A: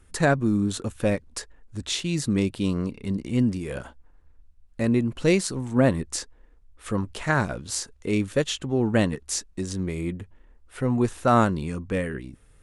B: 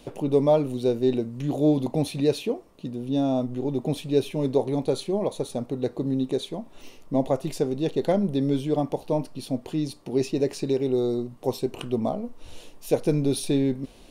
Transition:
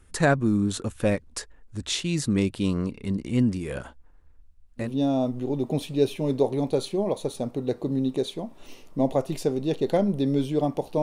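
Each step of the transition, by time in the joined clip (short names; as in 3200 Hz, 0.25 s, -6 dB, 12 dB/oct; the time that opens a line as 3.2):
A
4.84 switch to B from 2.99 s, crossfade 0.16 s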